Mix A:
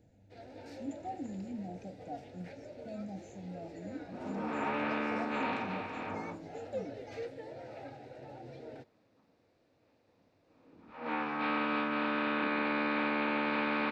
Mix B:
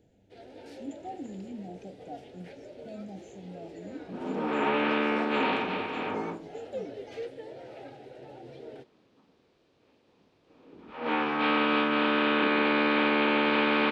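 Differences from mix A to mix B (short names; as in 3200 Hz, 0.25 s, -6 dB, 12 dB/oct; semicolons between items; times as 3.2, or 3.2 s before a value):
second sound +6.0 dB; master: add thirty-one-band EQ 100 Hz -7 dB, 400 Hz +9 dB, 3150 Hz +9 dB, 10000 Hz +11 dB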